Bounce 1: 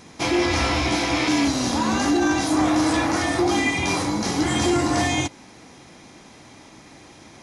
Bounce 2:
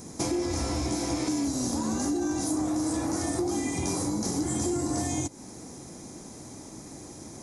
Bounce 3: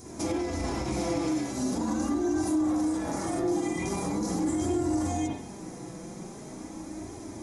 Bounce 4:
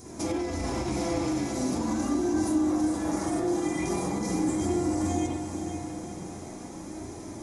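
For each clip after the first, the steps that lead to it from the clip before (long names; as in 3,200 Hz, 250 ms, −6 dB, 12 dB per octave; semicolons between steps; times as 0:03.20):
drawn EQ curve 380 Hz 0 dB, 3,000 Hz −16 dB, 7,400 Hz +6 dB; downward compressor 5 to 1, threshold −31 dBFS, peak gain reduction 13 dB; level +4 dB
convolution reverb RT60 0.65 s, pre-delay 35 ms, DRR −6 dB; brickwall limiter −17.5 dBFS, peak gain reduction 7 dB; flanger 0.42 Hz, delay 2.7 ms, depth 3.5 ms, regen −30%
feedback delay with all-pass diffusion 510 ms, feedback 46%, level −7 dB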